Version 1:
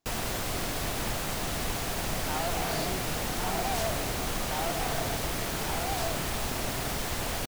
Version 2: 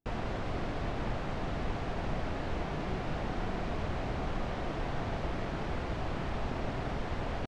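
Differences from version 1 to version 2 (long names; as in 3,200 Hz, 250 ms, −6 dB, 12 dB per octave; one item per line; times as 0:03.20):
speech: add Gaussian smoothing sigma 17 samples
second sound: muted
master: add head-to-tape spacing loss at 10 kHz 35 dB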